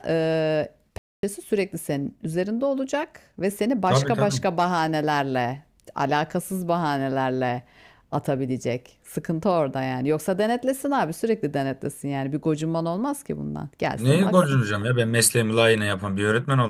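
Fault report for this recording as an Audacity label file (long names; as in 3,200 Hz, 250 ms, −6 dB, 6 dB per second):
0.980000	1.230000	drop-out 252 ms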